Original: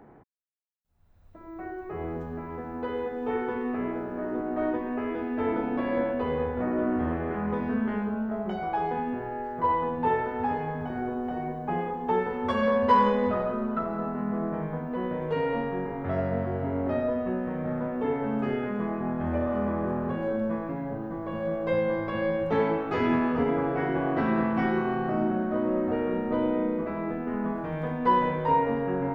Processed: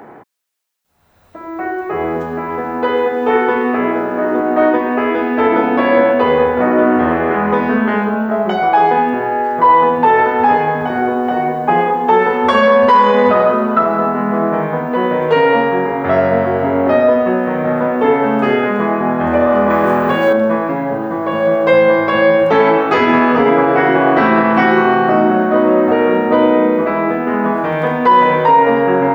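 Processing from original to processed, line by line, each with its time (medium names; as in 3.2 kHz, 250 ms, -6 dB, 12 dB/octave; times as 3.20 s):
19.70–20.33 s: treble shelf 2.2 kHz +11.5 dB
whole clip: high-pass 530 Hz 6 dB/octave; loudness maximiser +21 dB; trim -1 dB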